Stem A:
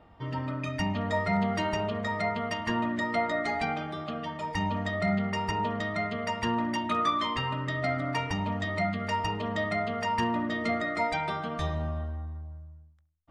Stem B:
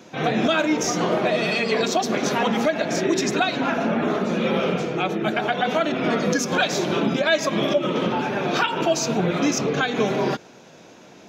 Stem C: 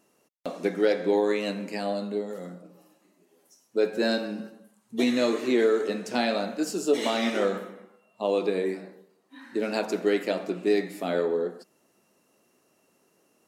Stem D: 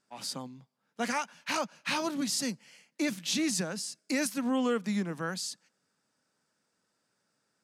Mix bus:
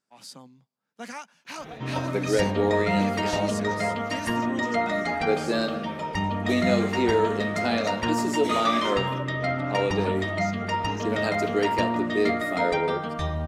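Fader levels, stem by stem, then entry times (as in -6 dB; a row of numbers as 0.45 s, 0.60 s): +2.5 dB, -19.0 dB, -1.0 dB, -6.5 dB; 1.60 s, 1.45 s, 1.50 s, 0.00 s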